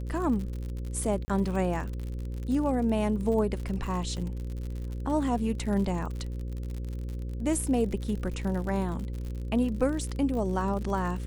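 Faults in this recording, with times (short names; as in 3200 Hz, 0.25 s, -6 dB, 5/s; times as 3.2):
buzz 60 Hz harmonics 9 -34 dBFS
crackle 69/s -35 dBFS
1.25–1.28 gap 30 ms
4.17 gap 2.2 ms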